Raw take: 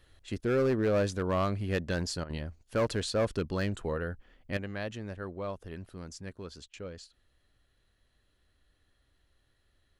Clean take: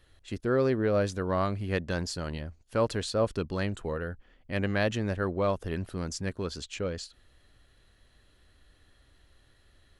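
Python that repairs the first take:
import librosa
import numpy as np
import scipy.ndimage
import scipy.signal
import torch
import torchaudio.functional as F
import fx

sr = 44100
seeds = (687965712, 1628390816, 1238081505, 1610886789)

y = fx.fix_declip(x, sr, threshold_db=-22.5)
y = fx.fix_interpolate(y, sr, at_s=(2.24, 6.68), length_ms=54.0)
y = fx.gain(y, sr, db=fx.steps((0.0, 0.0), (4.57, 9.5)))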